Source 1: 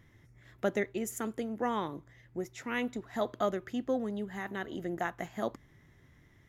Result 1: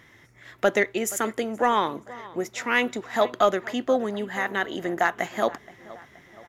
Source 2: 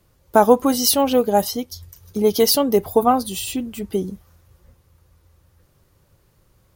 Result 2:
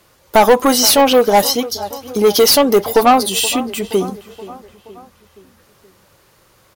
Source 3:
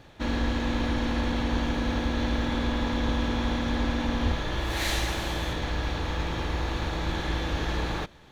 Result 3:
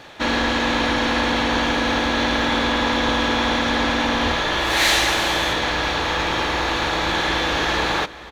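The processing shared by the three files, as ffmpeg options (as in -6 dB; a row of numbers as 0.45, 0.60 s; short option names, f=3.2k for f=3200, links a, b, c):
-filter_complex "[0:a]asplit=2[a][b];[b]adelay=474,lowpass=f=3.4k:p=1,volume=-19.5dB,asplit=2[c][d];[d]adelay=474,lowpass=f=3.4k:p=1,volume=0.54,asplit=2[e][f];[f]adelay=474,lowpass=f=3.4k:p=1,volume=0.54,asplit=2[g][h];[h]adelay=474,lowpass=f=3.4k:p=1,volume=0.54[i];[a][c][e][g][i]amix=inputs=5:normalize=0,asplit=2[j][k];[k]highpass=f=720:p=1,volume=20dB,asoftclip=type=tanh:threshold=-1dB[l];[j][l]amix=inputs=2:normalize=0,lowpass=f=7.3k:p=1,volume=-6dB"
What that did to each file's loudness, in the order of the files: +10.0, +5.5, +9.5 LU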